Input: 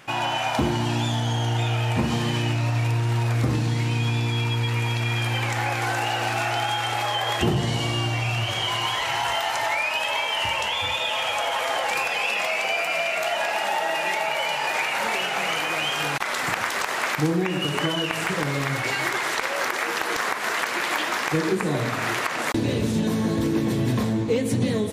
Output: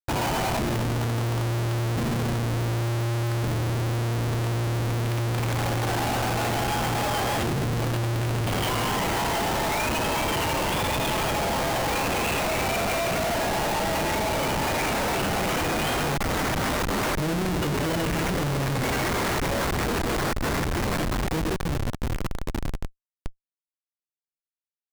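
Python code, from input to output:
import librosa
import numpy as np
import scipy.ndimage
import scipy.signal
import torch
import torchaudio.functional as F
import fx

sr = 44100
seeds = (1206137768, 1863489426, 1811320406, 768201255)

y = fx.fade_out_tail(x, sr, length_s=5.65)
y = fx.schmitt(y, sr, flips_db=-24.0)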